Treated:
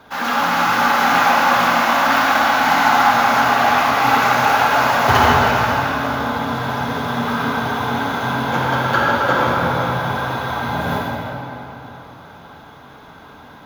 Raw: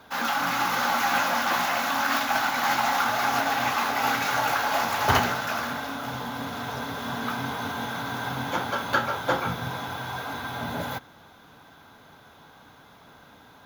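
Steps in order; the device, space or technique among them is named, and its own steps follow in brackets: swimming-pool hall (reverb RT60 3.3 s, pre-delay 47 ms, DRR -4.5 dB; high shelf 3700 Hz -6 dB); gain +5 dB

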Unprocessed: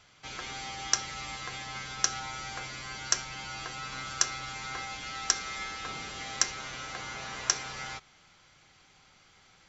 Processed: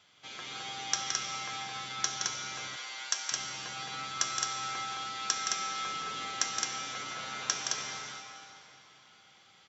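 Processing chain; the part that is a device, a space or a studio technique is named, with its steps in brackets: stadium PA (HPF 140 Hz 12 dB/oct; bell 3400 Hz +7 dB 0.34 oct; loudspeakers at several distances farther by 58 m -6 dB, 74 m -3 dB; reverb RT60 3.3 s, pre-delay 7 ms, DRR 4 dB); 2.76–3.32 Bessel high-pass 680 Hz, order 2; gain -5.5 dB

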